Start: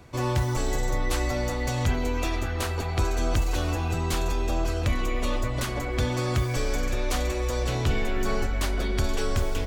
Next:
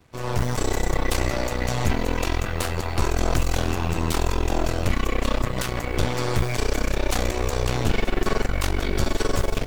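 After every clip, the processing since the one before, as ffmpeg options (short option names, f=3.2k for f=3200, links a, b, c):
-af "aeval=exprs='0.178*(cos(1*acos(clip(val(0)/0.178,-1,1)))-cos(1*PI/2))+0.0708*(cos(4*acos(clip(val(0)/0.178,-1,1)))-cos(4*PI/2))':c=same,acrusher=bits=7:mix=0:aa=0.5,dynaudnorm=f=210:g=3:m=9dB,volume=-8dB"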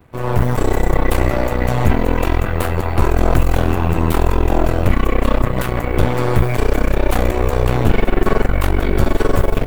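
-af "equalizer=f=5.6k:t=o:w=1.7:g=-15,volume=8.5dB"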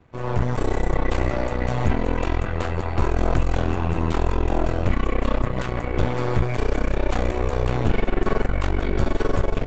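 -af "aresample=16000,aresample=44100,volume=-6.5dB"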